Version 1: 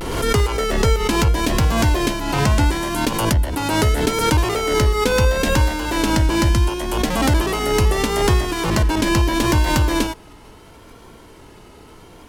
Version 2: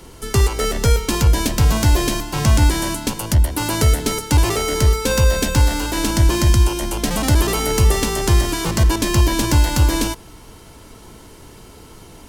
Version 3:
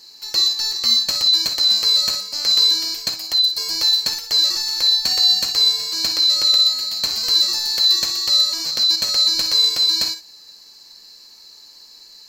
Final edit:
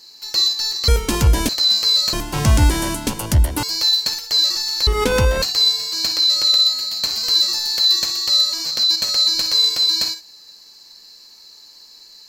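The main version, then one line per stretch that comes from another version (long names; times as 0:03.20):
3
0:00.88–0:01.49: punch in from 2
0:02.13–0:03.63: punch in from 2
0:04.87–0:05.42: punch in from 1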